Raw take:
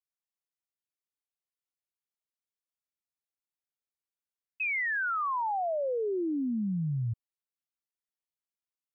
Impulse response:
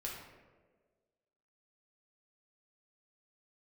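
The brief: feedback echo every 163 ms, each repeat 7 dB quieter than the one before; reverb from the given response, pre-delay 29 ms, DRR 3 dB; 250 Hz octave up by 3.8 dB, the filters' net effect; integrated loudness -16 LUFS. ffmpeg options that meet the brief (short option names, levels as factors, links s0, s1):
-filter_complex "[0:a]equalizer=f=250:t=o:g=5,aecho=1:1:163|326|489|652|815:0.447|0.201|0.0905|0.0407|0.0183,asplit=2[s0][s1];[1:a]atrim=start_sample=2205,adelay=29[s2];[s1][s2]afir=irnorm=-1:irlink=0,volume=0.708[s3];[s0][s3]amix=inputs=2:normalize=0,volume=3.55"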